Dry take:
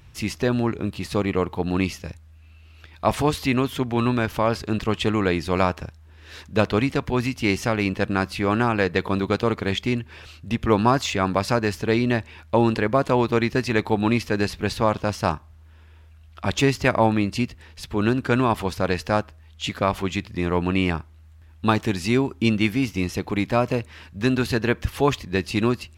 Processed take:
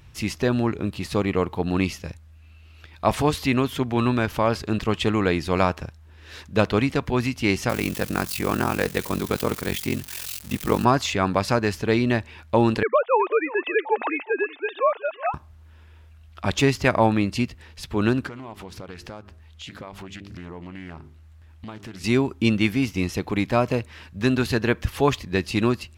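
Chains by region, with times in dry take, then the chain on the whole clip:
7.69–10.85 s: zero-crossing glitches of -21 dBFS + high-pass 58 Hz + ring modulator 22 Hz
12.83–15.34 s: formants replaced by sine waves + high-pass 400 Hz 24 dB/octave + feedback delay 369 ms, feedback 28%, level -18.5 dB
18.27–22.04 s: hum notches 50/100/150/200/250/300/350/400 Hz + compression, threshold -35 dBFS + loudspeaker Doppler distortion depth 0.35 ms
whole clip: none

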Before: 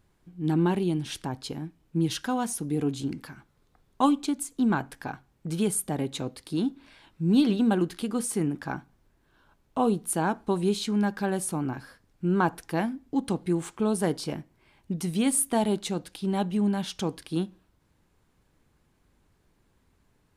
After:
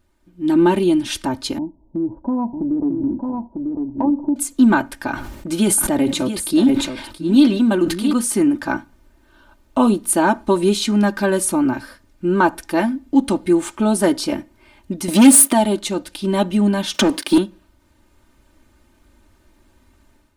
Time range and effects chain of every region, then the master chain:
1.58–4.36 s: Chebyshev low-pass 980 Hz, order 6 + compression, threshold -28 dBFS + delay 948 ms -4 dB
5.10–8.13 s: delay 675 ms -10.5 dB + decay stretcher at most 54 dB/s
15.08–15.53 s: waveshaping leveller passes 3 + brick-wall FIR high-pass 160 Hz
16.94–17.38 s: high-pass 160 Hz 24 dB/octave + waveshaping leveller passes 2 + three bands compressed up and down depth 70%
whole clip: comb 3.3 ms, depth 83%; level rider gain up to 9.5 dB

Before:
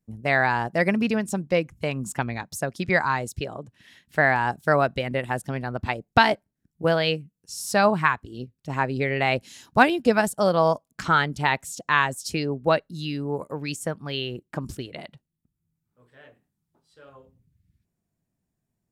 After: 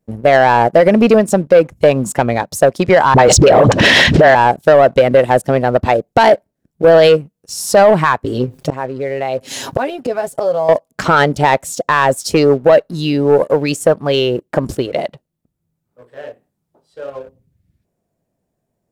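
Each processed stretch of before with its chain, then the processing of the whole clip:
3.14–4.35 s: low-pass 6 kHz 24 dB/octave + phase dispersion highs, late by 54 ms, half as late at 550 Hz + level flattener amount 100%
8.24–10.69 s: comb 7.4 ms, depth 61% + inverted gate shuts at -20 dBFS, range -28 dB + level flattener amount 50%
whole clip: peaking EQ 550 Hz +14 dB 1.3 oct; peak limiter -8 dBFS; waveshaping leveller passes 1; trim +6.5 dB

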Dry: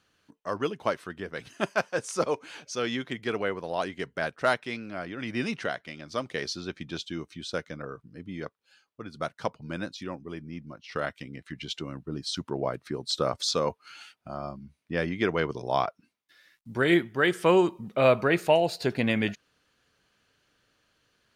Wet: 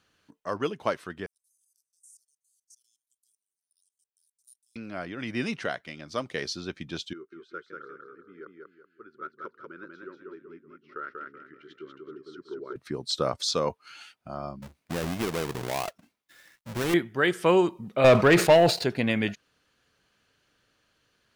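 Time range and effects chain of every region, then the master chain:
1.26–4.76 s: inverse Chebyshev high-pass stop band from 2.2 kHz, stop band 70 dB + level held to a coarse grid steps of 18 dB
7.13–12.76 s: two resonant band-passes 730 Hz, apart 1.8 oct + feedback delay 190 ms, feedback 33%, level -3 dB
14.62–16.94 s: square wave that keeps the level + compression 2.5:1, threshold -29 dBFS
18.04–18.84 s: treble shelf 9.3 kHz -9 dB + waveshaping leveller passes 2 + decay stretcher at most 130 dB/s
whole clip: none

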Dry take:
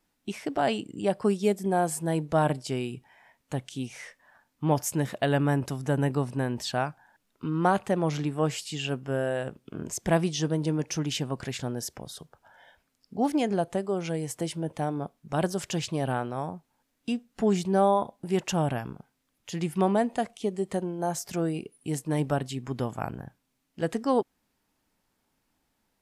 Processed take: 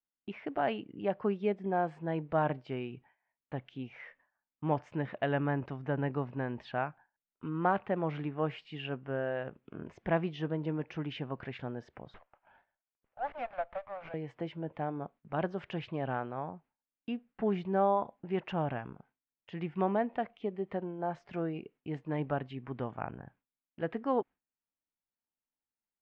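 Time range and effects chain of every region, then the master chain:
12.14–14.14 s: steep high-pass 540 Hz 96 dB/octave + sliding maximum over 9 samples
whole clip: gate with hold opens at -46 dBFS; low-pass 2.6 kHz 24 dB/octave; bass shelf 400 Hz -4.5 dB; trim -4 dB

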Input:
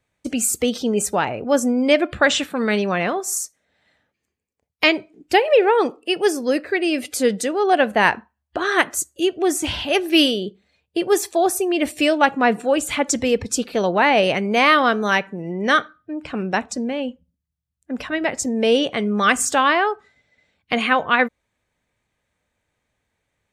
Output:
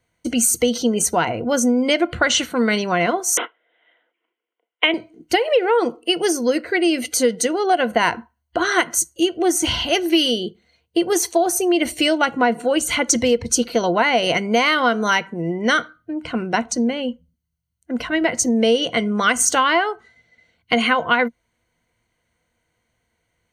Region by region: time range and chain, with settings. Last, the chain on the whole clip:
3.37–4.94 s: careless resampling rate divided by 6×, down none, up filtered + steep high-pass 310 Hz
whole clip: rippled EQ curve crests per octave 1.9, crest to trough 10 dB; compression, threshold -15 dBFS; dynamic bell 5.9 kHz, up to +5 dB, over -41 dBFS, Q 2.2; trim +2 dB

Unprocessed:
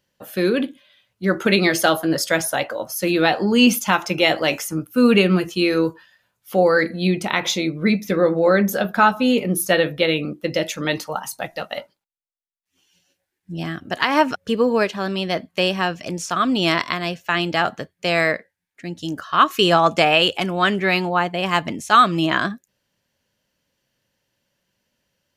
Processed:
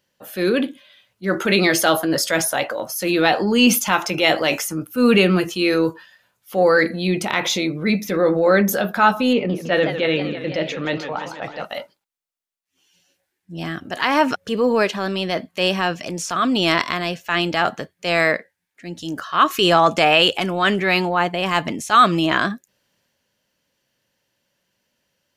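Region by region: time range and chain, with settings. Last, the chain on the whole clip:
9.33–11.65 s: distance through air 210 m + modulated delay 162 ms, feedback 68%, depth 200 cents, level -13 dB
whole clip: bass shelf 140 Hz -7 dB; transient shaper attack -5 dB, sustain +3 dB; trim +2 dB

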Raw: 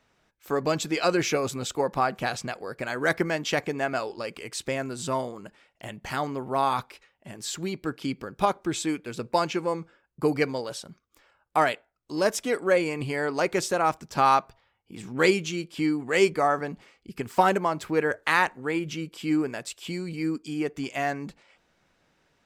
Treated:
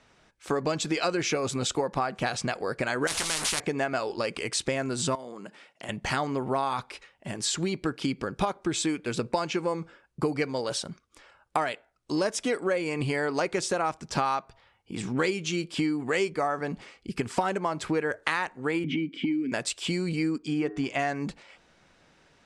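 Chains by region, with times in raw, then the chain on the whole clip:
3.07–3.60 s: jump at every zero crossing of -36.5 dBFS + doubling 19 ms -11 dB + spectrum-flattening compressor 10:1
5.15–5.89 s: high-pass 150 Hz 24 dB/octave + compression 2.5:1, threshold -46 dBFS
18.84–19.52 s: vowel filter i + bass shelf 160 Hz +11.5 dB + three bands compressed up and down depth 100%
20.38–20.99 s: treble shelf 5 kHz -11.5 dB + de-hum 104 Hz, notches 18
whole clip: Chebyshev low-pass 10 kHz, order 4; compression 6:1, threshold -32 dBFS; trim +7.5 dB

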